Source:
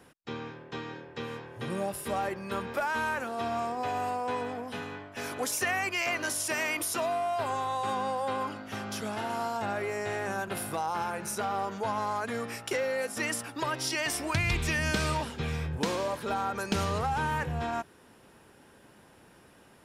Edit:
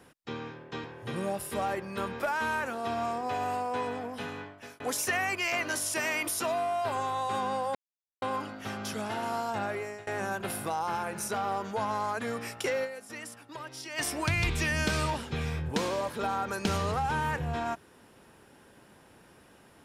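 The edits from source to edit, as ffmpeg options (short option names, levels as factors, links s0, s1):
-filter_complex "[0:a]asplit=7[s0][s1][s2][s3][s4][s5][s6];[s0]atrim=end=0.842[s7];[s1]atrim=start=1.378:end=5.34,asetpts=PTS-STARTPTS,afade=t=out:st=3.582:d=0.38[s8];[s2]atrim=start=5.34:end=8.29,asetpts=PTS-STARTPTS,afade=t=in:d=0.004:c=hsin,afade=t=out:st=2.946:d=0.004:c=hsin,apad=pad_dur=0.47[s9];[s3]atrim=start=8.29:end=10.14,asetpts=PTS-STARTPTS,afade=t=in:d=0.004:c=hsin,afade=t=out:st=1.33:d=0.52:c=qsin:silence=0.0707946[s10];[s4]atrim=start=10.14:end=13.15,asetpts=PTS-STARTPTS,afade=t=in:d=0.004:c=hsin:silence=0.0707946,afade=t=out:st=2.77:d=0.24:c=exp:silence=0.298538[s11];[s5]atrim=start=13.15:end=13.82,asetpts=PTS-STARTPTS,volume=0.299[s12];[s6]atrim=start=13.82,asetpts=PTS-STARTPTS,afade=t=in:d=0.24:c=exp:silence=0.298538[s13];[s8][s9][s10][s11][s12][s13]concat=n=6:v=0:a=1[s14];[s7][s14]acrossfade=d=0.004:c1=hsin:c2=hsin"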